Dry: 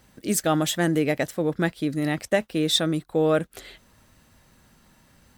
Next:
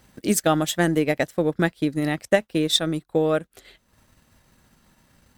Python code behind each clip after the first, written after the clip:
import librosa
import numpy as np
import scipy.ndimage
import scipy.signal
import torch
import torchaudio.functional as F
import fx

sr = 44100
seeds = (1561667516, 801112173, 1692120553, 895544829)

y = fx.transient(x, sr, attack_db=4, sustain_db=-8)
y = fx.rider(y, sr, range_db=10, speed_s=2.0)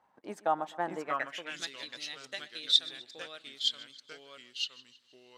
y = fx.echo_feedback(x, sr, ms=127, feedback_pct=49, wet_db=-20)
y = fx.echo_pitch(y, sr, ms=581, semitones=-2, count=2, db_per_echo=-3.0)
y = fx.filter_sweep_bandpass(y, sr, from_hz=900.0, to_hz=4000.0, start_s=0.98, end_s=1.69, q=4.0)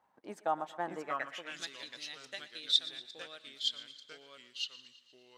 y = fx.echo_thinned(x, sr, ms=116, feedback_pct=63, hz=420.0, wet_db=-17.5)
y = F.gain(torch.from_numpy(y), -3.5).numpy()